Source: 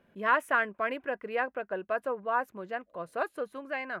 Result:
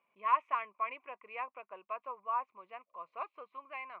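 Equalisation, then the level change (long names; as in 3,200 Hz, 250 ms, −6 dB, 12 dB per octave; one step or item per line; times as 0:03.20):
pair of resonant band-passes 1,600 Hz, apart 1.1 octaves
high-frequency loss of the air 160 metres
+3.0 dB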